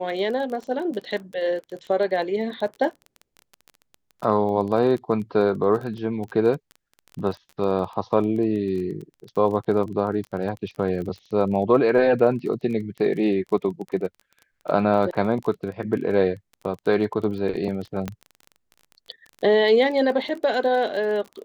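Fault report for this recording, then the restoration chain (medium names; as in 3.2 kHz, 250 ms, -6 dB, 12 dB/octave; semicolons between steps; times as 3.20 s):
crackle 21 per s -31 dBFS
18.08 s: pop -14 dBFS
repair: de-click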